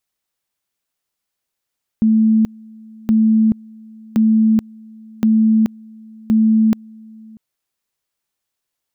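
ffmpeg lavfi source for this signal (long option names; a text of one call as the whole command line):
ffmpeg -f lavfi -i "aevalsrc='pow(10,(-9.5-26.5*gte(mod(t,1.07),0.43))/20)*sin(2*PI*220*t)':duration=5.35:sample_rate=44100" out.wav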